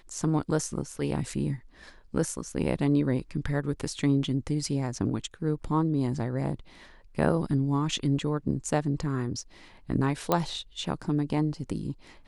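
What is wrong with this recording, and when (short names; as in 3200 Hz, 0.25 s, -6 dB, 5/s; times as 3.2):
10.32 pop -10 dBFS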